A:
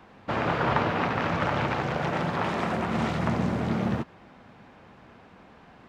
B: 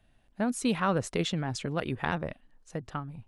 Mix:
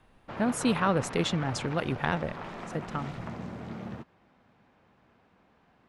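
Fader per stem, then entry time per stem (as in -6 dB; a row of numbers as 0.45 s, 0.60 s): -12.5 dB, +1.5 dB; 0.00 s, 0.00 s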